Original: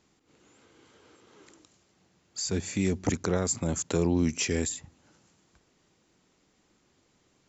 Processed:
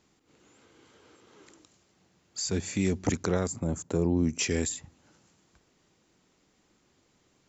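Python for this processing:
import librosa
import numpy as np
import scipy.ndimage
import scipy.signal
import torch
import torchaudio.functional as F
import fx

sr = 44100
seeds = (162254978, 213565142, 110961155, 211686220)

y = fx.peak_eq(x, sr, hz=3600.0, db=-12.5, octaves=2.8, at=(3.47, 4.39))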